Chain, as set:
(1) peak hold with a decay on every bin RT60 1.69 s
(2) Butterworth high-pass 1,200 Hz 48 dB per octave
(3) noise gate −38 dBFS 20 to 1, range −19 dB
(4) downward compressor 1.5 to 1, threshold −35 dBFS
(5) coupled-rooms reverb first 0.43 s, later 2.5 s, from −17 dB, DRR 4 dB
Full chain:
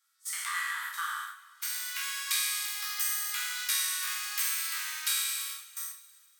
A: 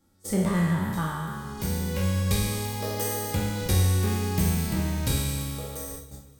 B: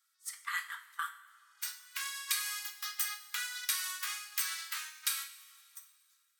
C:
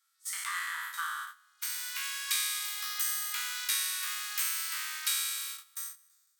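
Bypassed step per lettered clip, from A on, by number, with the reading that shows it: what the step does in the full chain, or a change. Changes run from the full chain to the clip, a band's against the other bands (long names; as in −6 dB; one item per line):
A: 2, 1 kHz band +8.0 dB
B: 1, change in crest factor +4.5 dB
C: 5, change in integrated loudness −1.5 LU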